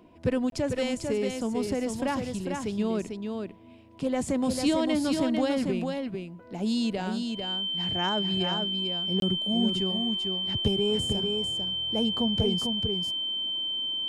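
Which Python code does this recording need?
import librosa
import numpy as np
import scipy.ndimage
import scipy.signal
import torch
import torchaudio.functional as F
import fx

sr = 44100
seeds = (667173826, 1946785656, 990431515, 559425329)

y = fx.fix_declip(x, sr, threshold_db=-14.5)
y = fx.notch(y, sr, hz=3100.0, q=30.0)
y = fx.fix_interpolate(y, sr, at_s=(0.5, 9.2), length_ms=22.0)
y = fx.fix_echo_inverse(y, sr, delay_ms=447, level_db=-5.0)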